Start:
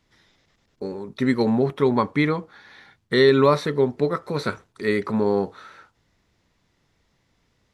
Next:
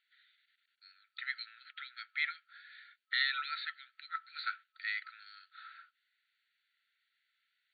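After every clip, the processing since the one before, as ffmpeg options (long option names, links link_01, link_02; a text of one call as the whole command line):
ffmpeg -i in.wav -af "afftfilt=real='re*between(b*sr/4096,1300,4600)':imag='im*between(b*sr/4096,1300,4600)':win_size=4096:overlap=0.75,volume=-6.5dB" out.wav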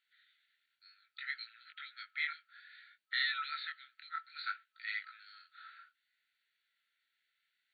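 ffmpeg -i in.wav -af "flanger=delay=18:depth=7.8:speed=0.62,volume=1dB" out.wav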